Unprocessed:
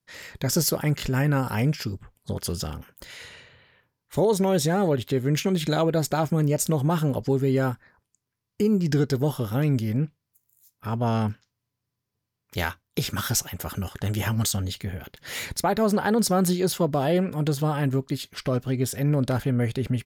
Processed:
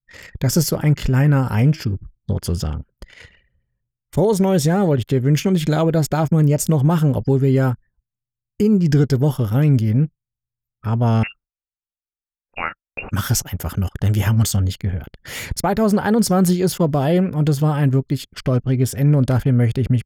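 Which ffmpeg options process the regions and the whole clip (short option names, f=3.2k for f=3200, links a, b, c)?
-filter_complex "[0:a]asettb=1/sr,asplit=3[a][b][c];[a]atrim=end=0.634[d];[b]atrim=start=0.63:end=3.18,asetpts=PTS-STARTPTS,afade=t=in:d=0.004:c=qsin,afade=t=out:st=2.546:d=0.004:c=qsin,highshelf=f=5.7k:g=-4,bandreject=f=320.3:t=h:w=4,bandreject=f=640.6:t=h:w=4,bandreject=f=960.9:t=h:w=4,bandreject=f=1.2812k:t=h:w=4,bandreject=f=1.6015k:t=h:w=4,bandreject=f=1.9218k:t=h:w=4,bandreject=f=2.2421k:t=h:w=4,bandreject=f=2.5624k:t=h:w=4,bandreject=f=2.8827k:t=h:w=4,bandreject=f=3.203k:t=h:w=4[e];[c]atrim=start=3.176[f];[d][e]acrossfade=d=0.004:c1=hsin:c2=qsin[g];[g][f]acrossfade=d=0.004:c1=qsin:c2=hsin,asettb=1/sr,asplit=3[h][i][j];[h]atrim=end=11.234[k];[i]atrim=start=11.23:end=13.11,asetpts=PTS-STARTPTS,afade=t=in:d=0.004:c=qsin,afade=t=out:st=1.876:d=0.004:c=qsin,aemphasis=mode=production:type=riaa,lowpass=f=2.5k:t=q:w=0.5098,lowpass=f=2.5k:t=q:w=0.6013,lowpass=f=2.5k:t=q:w=0.9,lowpass=f=2.5k:t=q:w=2.563,afreqshift=-2900[l];[j]atrim=start=13.106[m];[k][l]acrossfade=d=0.004:c1=hsin:c2=qsin[n];[n][m]acrossfade=d=0.004:c1=qsin:c2=hsin,bandreject=f=3.9k:w=10,anlmdn=0.251,lowshelf=f=160:g=10.5,volume=3dB"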